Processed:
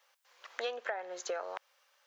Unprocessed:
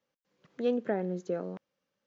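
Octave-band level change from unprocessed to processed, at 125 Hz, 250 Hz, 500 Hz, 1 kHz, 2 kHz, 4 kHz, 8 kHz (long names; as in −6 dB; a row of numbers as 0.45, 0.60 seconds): below −35 dB, −23.5 dB, −6.5 dB, +2.0 dB, +6.0 dB, +8.0 dB, can't be measured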